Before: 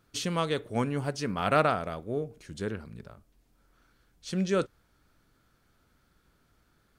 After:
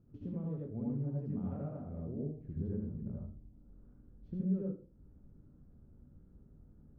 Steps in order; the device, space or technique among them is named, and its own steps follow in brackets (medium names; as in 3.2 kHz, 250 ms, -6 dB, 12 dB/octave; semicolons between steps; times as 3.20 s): television next door (compression 4:1, threshold -45 dBFS, peak gain reduction 21.5 dB; low-pass 280 Hz 12 dB/octave; reverberation RT60 0.40 s, pre-delay 69 ms, DRR -4.5 dB); trim +5 dB